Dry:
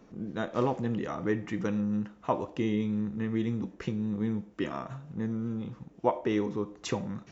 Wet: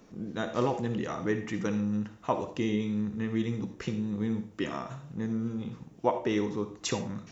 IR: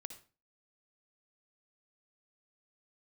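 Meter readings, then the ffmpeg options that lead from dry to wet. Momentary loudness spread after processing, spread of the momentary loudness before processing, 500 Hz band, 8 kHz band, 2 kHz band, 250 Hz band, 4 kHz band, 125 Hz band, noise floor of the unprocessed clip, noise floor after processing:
6 LU, 6 LU, 0.0 dB, can't be measured, +1.5 dB, 0.0 dB, +4.0 dB, 0.0 dB, −57 dBFS, −53 dBFS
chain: -filter_complex "[0:a]asplit=2[link_01][link_02];[1:a]atrim=start_sample=2205,asetrate=42777,aresample=44100,highshelf=frequency=3200:gain=12[link_03];[link_02][link_03]afir=irnorm=-1:irlink=0,volume=8.5dB[link_04];[link_01][link_04]amix=inputs=2:normalize=0,volume=-8.5dB"

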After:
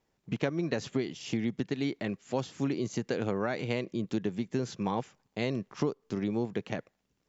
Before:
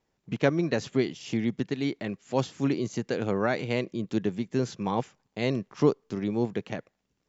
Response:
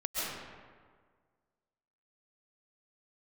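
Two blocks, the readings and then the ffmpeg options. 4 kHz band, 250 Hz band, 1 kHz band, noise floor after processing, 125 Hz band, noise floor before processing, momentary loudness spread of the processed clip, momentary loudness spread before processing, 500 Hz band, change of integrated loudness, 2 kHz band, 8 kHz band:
−3.0 dB, −3.5 dB, −4.5 dB, −78 dBFS, −4.0 dB, −78 dBFS, 4 LU, 6 LU, −5.0 dB, −4.0 dB, −4.0 dB, can't be measured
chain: -af "acompressor=threshold=-26dB:ratio=6"

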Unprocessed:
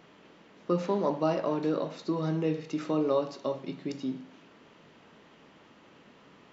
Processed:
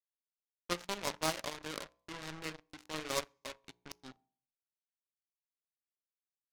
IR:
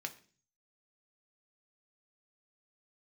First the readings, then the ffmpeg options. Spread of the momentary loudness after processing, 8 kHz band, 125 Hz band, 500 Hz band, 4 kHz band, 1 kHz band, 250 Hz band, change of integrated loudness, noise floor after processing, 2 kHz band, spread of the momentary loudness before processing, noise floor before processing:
17 LU, can't be measured, −15.5 dB, −14.0 dB, +5.0 dB, −7.0 dB, −17.0 dB, −9.0 dB, below −85 dBFS, +3.5 dB, 9 LU, −58 dBFS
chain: -filter_complex "[0:a]acrusher=bits=4:mix=0:aa=0.5,equalizer=frequency=310:width=0.32:gain=-12,bandreject=frequency=60.29:width_type=h:width=4,bandreject=frequency=120.58:width_type=h:width=4,bandreject=frequency=180.87:width_type=h:width=4,bandreject=frequency=241.16:width_type=h:width=4,bandreject=frequency=301.45:width_type=h:width=4,bandreject=frequency=361.74:width_type=h:width=4,bandreject=frequency=422.03:width_type=h:width=4,bandreject=frequency=482.32:width_type=h:width=4,bandreject=frequency=542.61:width_type=h:width=4,bandreject=frequency=602.9:width_type=h:width=4,bandreject=frequency=663.19:width_type=h:width=4,bandreject=frequency=723.48:width_type=h:width=4,bandreject=frequency=783.77:width_type=h:width=4,bandreject=frequency=844.06:width_type=h:width=4,bandreject=frequency=904.35:width_type=h:width=4,bandreject=frequency=964.64:width_type=h:width=4,bandreject=frequency=1024.93:width_type=h:width=4,bandreject=frequency=1085.22:width_type=h:width=4,bandreject=frequency=1145.51:width_type=h:width=4,aeval=exprs='0.0794*(cos(1*acos(clip(val(0)/0.0794,-1,1)))-cos(1*PI/2))+0.0251*(cos(3*acos(clip(val(0)/0.0794,-1,1)))-cos(3*PI/2))':channel_layout=same,asplit=2[link_01][link_02];[1:a]atrim=start_sample=2205,asetrate=43218,aresample=44100[link_03];[link_02][link_03]afir=irnorm=-1:irlink=0,volume=-16.5dB[link_04];[link_01][link_04]amix=inputs=2:normalize=0,volume=8dB"

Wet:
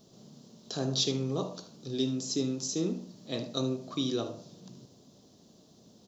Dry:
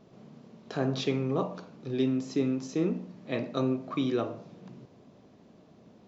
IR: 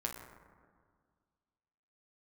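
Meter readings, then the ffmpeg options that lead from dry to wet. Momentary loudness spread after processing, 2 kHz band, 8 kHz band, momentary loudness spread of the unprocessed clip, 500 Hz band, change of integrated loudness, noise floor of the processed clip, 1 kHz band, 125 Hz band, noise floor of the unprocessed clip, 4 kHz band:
15 LU, −7.5 dB, can't be measured, 13 LU, −3.5 dB, −1.5 dB, −60 dBFS, −6.0 dB, −2.0 dB, −58 dBFS, +8.0 dB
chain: -af "aexciter=amount=10:drive=6.1:freq=3400,tiltshelf=frequency=970:gain=3.5,aecho=1:1:75:0.211,volume=-6dB"

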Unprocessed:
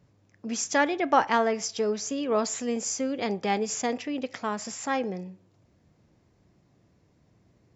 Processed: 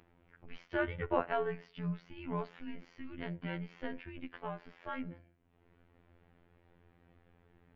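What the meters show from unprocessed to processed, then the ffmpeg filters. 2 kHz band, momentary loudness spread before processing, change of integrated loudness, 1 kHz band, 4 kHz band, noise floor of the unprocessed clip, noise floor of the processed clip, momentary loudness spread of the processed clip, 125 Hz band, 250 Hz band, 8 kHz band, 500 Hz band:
−11.0 dB, 10 LU, −12.0 dB, −14.0 dB, −18.0 dB, −65 dBFS, −69 dBFS, 14 LU, +1.0 dB, −11.5 dB, can't be measured, −11.5 dB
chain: -af "acompressor=mode=upward:threshold=-36dB:ratio=2.5,highpass=frequency=260:width_type=q:width=0.5412,highpass=frequency=260:width_type=q:width=1.307,lowpass=frequency=3300:width_type=q:width=0.5176,lowpass=frequency=3300:width_type=q:width=0.7071,lowpass=frequency=3300:width_type=q:width=1.932,afreqshift=-240,afftfilt=real='hypot(re,im)*cos(PI*b)':imag='0':win_size=2048:overlap=0.75,volume=-6.5dB"

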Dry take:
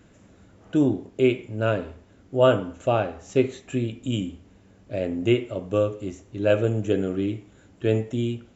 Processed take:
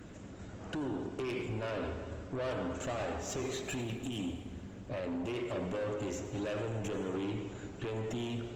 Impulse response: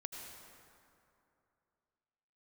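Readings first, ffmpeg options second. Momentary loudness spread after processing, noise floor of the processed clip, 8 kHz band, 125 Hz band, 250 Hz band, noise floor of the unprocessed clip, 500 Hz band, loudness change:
7 LU, −48 dBFS, can't be measured, −12.0 dB, −12.0 dB, −55 dBFS, −14.0 dB, −13.0 dB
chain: -filter_complex "[0:a]acompressor=threshold=-21dB:ratio=8,alimiter=level_in=1.5dB:limit=-24dB:level=0:latency=1:release=46,volume=-1.5dB,acrossover=split=480[link_01][link_02];[link_01]acompressor=threshold=-37dB:ratio=6[link_03];[link_03][link_02]amix=inputs=2:normalize=0,asoftclip=type=tanh:threshold=-39dB,asplit=2[link_04][link_05];[1:a]atrim=start_sample=2205[link_06];[link_05][link_06]afir=irnorm=-1:irlink=0,volume=4dB[link_07];[link_04][link_07]amix=inputs=2:normalize=0" -ar 48000 -c:a libopus -b:a 20k

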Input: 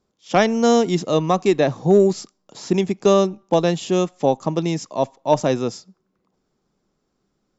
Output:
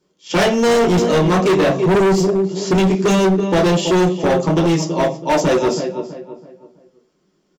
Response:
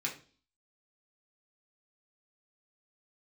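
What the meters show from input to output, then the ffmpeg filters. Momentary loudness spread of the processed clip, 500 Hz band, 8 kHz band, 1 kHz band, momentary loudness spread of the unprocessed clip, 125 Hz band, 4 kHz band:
6 LU, +3.0 dB, can't be measured, +3.0 dB, 8 LU, +6.0 dB, +5.5 dB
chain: -filter_complex "[0:a]asplit=2[link_01][link_02];[link_02]adelay=327,lowpass=frequency=2200:poles=1,volume=-11dB,asplit=2[link_03][link_04];[link_04]adelay=327,lowpass=frequency=2200:poles=1,volume=0.35,asplit=2[link_05][link_06];[link_06]adelay=327,lowpass=frequency=2200:poles=1,volume=0.35,asplit=2[link_07][link_08];[link_08]adelay=327,lowpass=frequency=2200:poles=1,volume=0.35[link_09];[link_01][link_03][link_05][link_07][link_09]amix=inputs=5:normalize=0[link_10];[1:a]atrim=start_sample=2205,asetrate=57330,aresample=44100[link_11];[link_10][link_11]afir=irnorm=-1:irlink=0,asoftclip=type=hard:threshold=-19dB,volume=7.5dB"

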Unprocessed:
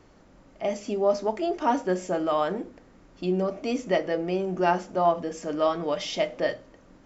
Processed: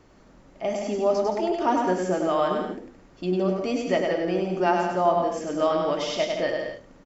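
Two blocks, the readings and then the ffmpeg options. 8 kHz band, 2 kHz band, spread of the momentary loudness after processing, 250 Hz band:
can't be measured, +2.0 dB, 8 LU, +2.5 dB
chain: -af "aecho=1:1:100|170|219|253.3|277.3:0.631|0.398|0.251|0.158|0.1"

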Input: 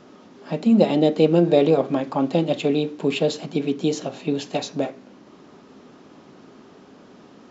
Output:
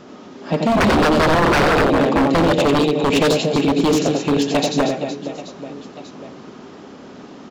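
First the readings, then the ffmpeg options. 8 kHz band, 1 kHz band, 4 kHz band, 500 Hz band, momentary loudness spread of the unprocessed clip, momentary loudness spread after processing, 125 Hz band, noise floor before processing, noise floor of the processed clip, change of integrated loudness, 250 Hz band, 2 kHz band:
can't be measured, +12.0 dB, +9.0 dB, +3.5 dB, 11 LU, 18 LU, +5.0 dB, −49 dBFS, −40 dBFS, +5.0 dB, +4.0 dB, +15.0 dB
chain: -af "aecho=1:1:90|234|464.4|833|1423:0.631|0.398|0.251|0.158|0.1,aeval=exprs='0.15*(abs(mod(val(0)/0.15+3,4)-2)-1)':channel_layout=same,volume=7dB"

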